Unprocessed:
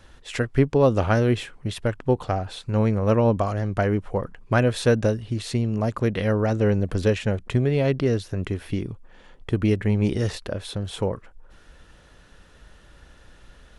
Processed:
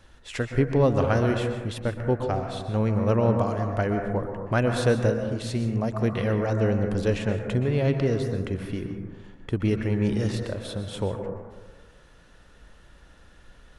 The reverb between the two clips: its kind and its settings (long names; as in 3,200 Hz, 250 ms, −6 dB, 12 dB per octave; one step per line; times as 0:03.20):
dense smooth reverb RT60 1.4 s, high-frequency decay 0.25×, pre-delay 110 ms, DRR 4.5 dB
level −3.5 dB